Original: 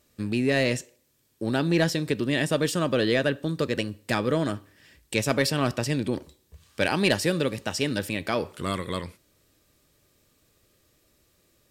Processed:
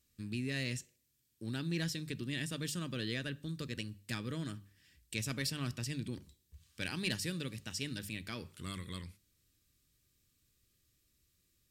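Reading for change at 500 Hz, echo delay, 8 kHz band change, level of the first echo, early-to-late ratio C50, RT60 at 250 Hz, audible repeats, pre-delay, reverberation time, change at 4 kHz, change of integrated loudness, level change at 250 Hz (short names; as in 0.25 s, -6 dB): -21.0 dB, none, -8.5 dB, none, none, none, none, none, none, -10.0 dB, -13.5 dB, -13.5 dB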